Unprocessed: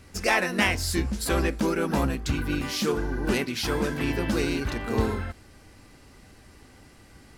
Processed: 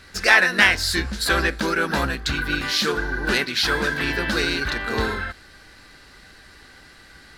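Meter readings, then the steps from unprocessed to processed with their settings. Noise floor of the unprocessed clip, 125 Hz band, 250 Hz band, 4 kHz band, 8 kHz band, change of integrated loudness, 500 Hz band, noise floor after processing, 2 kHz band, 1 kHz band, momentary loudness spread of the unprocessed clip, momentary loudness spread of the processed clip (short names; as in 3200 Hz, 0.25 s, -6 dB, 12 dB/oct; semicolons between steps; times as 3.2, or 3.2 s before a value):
-53 dBFS, -1.5 dB, -1.0 dB, +9.5 dB, +3.5 dB, +6.0 dB, +1.0 dB, -48 dBFS, +11.0 dB, +5.0 dB, 5 LU, 9 LU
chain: fifteen-band EQ 100 Hz -7 dB, 250 Hz -4 dB, 1600 Hz +12 dB, 4000 Hz +11 dB; gain +1.5 dB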